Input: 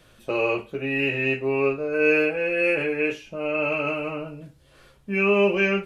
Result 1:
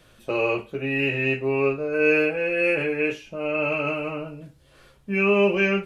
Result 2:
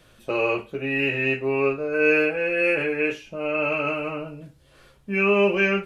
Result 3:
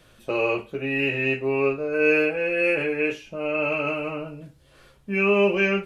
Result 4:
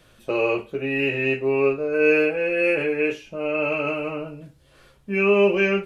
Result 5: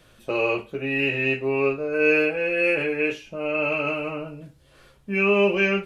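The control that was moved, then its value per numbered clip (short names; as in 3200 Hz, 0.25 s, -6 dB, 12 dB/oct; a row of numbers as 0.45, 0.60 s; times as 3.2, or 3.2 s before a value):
dynamic EQ, frequency: 140, 1500, 9900, 410, 3800 Hz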